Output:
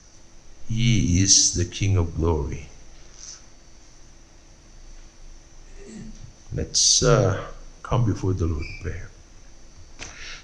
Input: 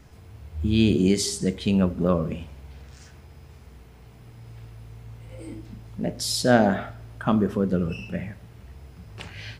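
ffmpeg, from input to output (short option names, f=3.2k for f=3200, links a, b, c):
-af "afreqshift=-86,asetrate=40517,aresample=44100,lowpass=f=6k:t=q:w=13"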